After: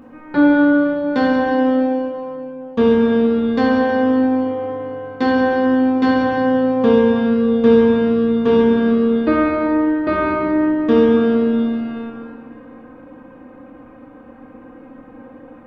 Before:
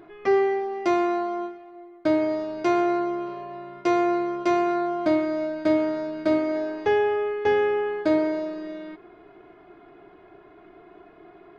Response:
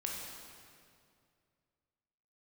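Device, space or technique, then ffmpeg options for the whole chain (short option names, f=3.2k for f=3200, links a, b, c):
slowed and reverbed: -filter_complex "[0:a]asetrate=32634,aresample=44100[a];[1:a]atrim=start_sample=2205[b];[a][b]afir=irnorm=-1:irlink=0,volume=8dB"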